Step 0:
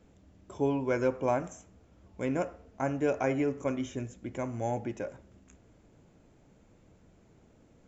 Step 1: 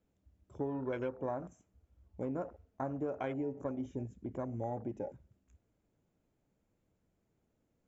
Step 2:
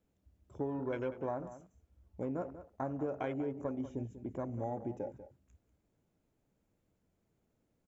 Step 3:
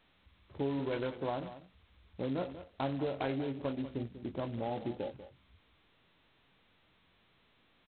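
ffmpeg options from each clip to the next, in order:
ffmpeg -i in.wav -af "afwtdn=0.0126,acompressor=threshold=-33dB:ratio=4,volume=-1.5dB" out.wav
ffmpeg -i in.wav -filter_complex "[0:a]asplit=2[link_01][link_02];[link_02]adelay=192.4,volume=-13dB,highshelf=frequency=4000:gain=-4.33[link_03];[link_01][link_03]amix=inputs=2:normalize=0" out.wav
ffmpeg -i in.wav -filter_complex "[0:a]asplit=2[link_01][link_02];[link_02]adelay=22,volume=-9dB[link_03];[link_01][link_03]amix=inputs=2:normalize=0,volume=1.5dB" -ar 8000 -c:a adpcm_g726 -b:a 16k out.wav

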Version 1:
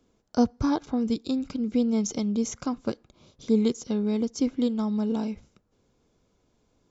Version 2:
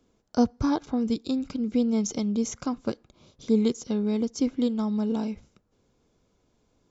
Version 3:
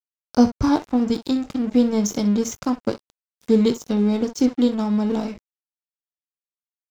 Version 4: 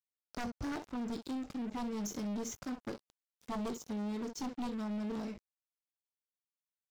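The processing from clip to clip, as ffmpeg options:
ffmpeg -i in.wav -af anull out.wav
ffmpeg -i in.wav -filter_complex "[0:a]asplit=2[link_01][link_02];[link_02]aecho=0:1:20|63:0.355|0.211[link_03];[link_01][link_03]amix=inputs=2:normalize=0,aeval=exprs='sgn(val(0))*max(abs(val(0))-0.00841,0)':channel_layout=same,volume=6.5dB" out.wav
ffmpeg -i in.wav -af "aeval=exprs='0.168*(abs(mod(val(0)/0.168+3,4)-2)-1)':channel_layout=same,aeval=exprs='(tanh(20*val(0)+0.15)-tanh(0.15))/20':channel_layout=same,volume=-9dB" out.wav

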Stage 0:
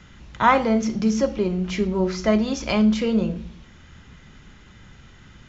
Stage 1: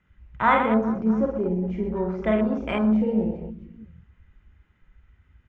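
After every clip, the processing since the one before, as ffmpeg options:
ffmpeg -i in.wav -af "highshelf=frequency=3200:width_type=q:width=1.5:gain=-11,aecho=1:1:50|125|237.5|406.2|659.4:0.631|0.398|0.251|0.158|0.1,afwtdn=0.0447,volume=-4.5dB" out.wav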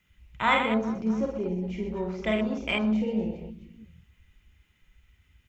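ffmpeg -i in.wav -af "aexciter=amount=4.5:drive=5.7:freq=2200,volume=-5dB" out.wav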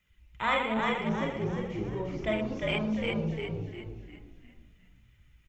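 ffmpeg -i in.wav -filter_complex "[0:a]flanger=delay=1.6:depth=1.8:regen=50:speed=1.9:shape=sinusoidal,asplit=2[link_01][link_02];[link_02]asplit=6[link_03][link_04][link_05][link_06][link_07][link_08];[link_03]adelay=351,afreqshift=-56,volume=-3dB[link_09];[link_04]adelay=702,afreqshift=-112,volume=-10.1dB[link_10];[link_05]adelay=1053,afreqshift=-168,volume=-17.3dB[link_11];[link_06]adelay=1404,afreqshift=-224,volume=-24.4dB[link_12];[link_07]adelay=1755,afreqshift=-280,volume=-31.5dB[link_13];[link_08]adelay=2106,afreqshift=-336,volume=-38.7dB[link_14];[link_09][link_10][link_11][link_12][link_13][link_14]amix=inputs=6:normalize=0[link_15];[link_01][link_15]amix=inputs=2:normalize=0" out.wav

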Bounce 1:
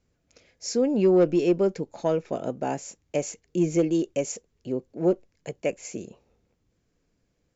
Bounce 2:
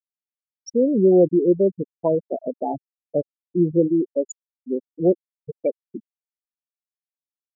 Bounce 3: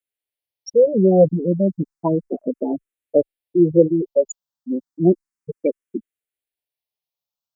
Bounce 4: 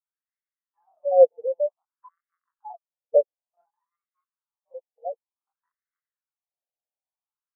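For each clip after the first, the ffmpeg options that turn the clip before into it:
ffmpeg -i in.wav -af "afftfilt=real='re*gte(hypot(re,im),0.158)':imag='im*gte(hypot(re,im),0.158)':win_size=1024:overlap=0.75,volume=4.5dB" out.wav
ffmpeg -i in.wav -filter_complex "[0:a]asplit=2[link_01][link_02];[link_02]afreqshift=0.32[link_03];[link_01][link_03]amix=inputs=2:normalize=1,volume=8dB" out.wav
ffmpeg -i in.wav -af "afftfilt=real='re*between(b*sr/1024,620*pow(1600/620,0.5+0.5*sin(2*PI*0.55*pts/sr))/1.41,620*pow(1600/620,0.5+0.5*sin(2*PI*0.55*pts/sr))*1.41)':imag='im*between(b*sr/1024,620*pow(1600/620,0.5+0.5*sin(2*PI*0.55*pts/sr))/1.41,620*pow(1600/620,0.5+0.5*sin(2*PI*0.55*pts/sr))*1.41)':win_size=1024:overlap=0.75" out.wav

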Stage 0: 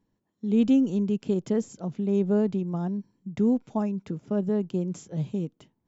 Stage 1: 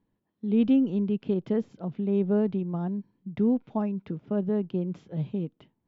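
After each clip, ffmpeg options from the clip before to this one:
ffmpeg -i in.wav -af "lowpass=frequency=3700:width=0.5412,lowpass=frequency=3700:width=1.3066,volume=-1dB" out.wav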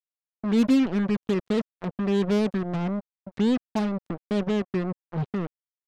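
ffmpeg -i in.wav -af "acrusher=bits=4:mix=0:aa=0.5,volume=1.5dB" out.wav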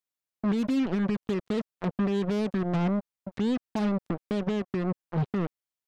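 ffmpeg -i in.wav -af "alimiter=limit=-23dB:level=0:latency=1:release=118,volume=2.5dB" out.wav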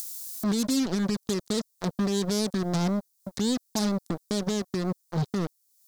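ffmpeg -i in.wav -af "acompressor=mode=upward:threshold=-33dB:ratio=2.5,aexciter=amount=10.6:drive=3.2:freq=4000" out.wav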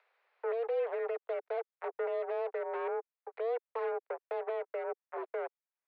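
ffmpeg -i in.wav -af "highpass=frequency=200:width_type=q:width=0.5412,highpass=frequency=200:width_type=q:width=1.307,lowpass=frequency=2300:width_type=q:width=0.5176,lowpass=frequency=2300:width_type=q:width=0.7071,lowpass=frequency=2300:width_type=q:width=1.932,afreqshift=230,volume=-6dB" out.wav

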